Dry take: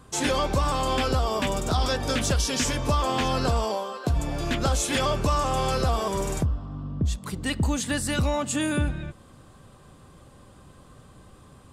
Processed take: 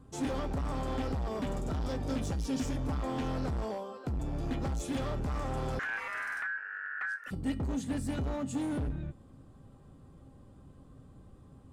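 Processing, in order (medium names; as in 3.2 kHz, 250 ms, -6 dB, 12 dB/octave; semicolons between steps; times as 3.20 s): tilt shelf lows +7.5 dB, about 730 Hz; hard clipper -21 dBFS, distortion -8 dB; feedback comb 270 Hz, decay 0.3 s, harmonics odd, mix 70%; 5.79–7.31 s: ring modulator 1.6 kHz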